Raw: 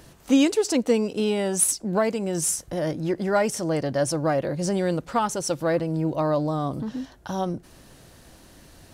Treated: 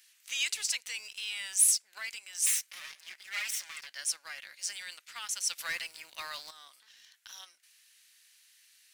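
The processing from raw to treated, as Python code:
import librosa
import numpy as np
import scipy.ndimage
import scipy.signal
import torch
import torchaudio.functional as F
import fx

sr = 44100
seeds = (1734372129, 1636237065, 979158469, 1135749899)

p1 = fx.lower_of_two(x, sr, delay_ms=5.2, at=(2.46, 3.87))
p2 = scipy.signal.sosfilt(scipy.signal.cheby1(3, 1.0, 2100.0, 'highpass', fs=sr, output='sos'), p1)
p3 = fx.leveller(p2, sr, passes=1)
p4 = fx.transient(p3, sr, attack_db=0, sustain_db=5)
p5 = fx.leveller(p4, sr, passes=3, at=(5.58, 6.51))
p6 = np.clip(p5, -10.0 ** (-17.5 / 20.0), 10.0 ** (-17.5 / 20.0))
p7 = p5 + (p6 * 10.0 ** (-11.0 / 20.0))
y = p7 * 10.0 ** (-6.0 / 20.0)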